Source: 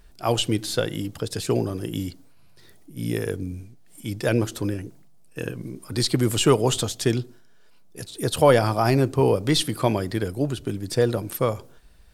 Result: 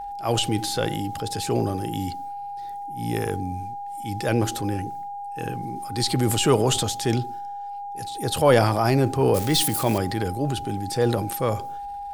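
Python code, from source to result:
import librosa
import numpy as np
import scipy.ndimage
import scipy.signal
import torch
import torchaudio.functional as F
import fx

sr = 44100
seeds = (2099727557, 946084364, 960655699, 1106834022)

y = fx.crossing_spikes(x, sr, level_db=-24.0, at=(9.34, 9.98))
y = fx.transient(y, sr, attack_db=-4, sustain_db=5)
y = y + 10.0 ** (-31.0 / 20.0) * np.sin(2.0 * np.pi * 810.0 * np.arange(len(y)) / sr)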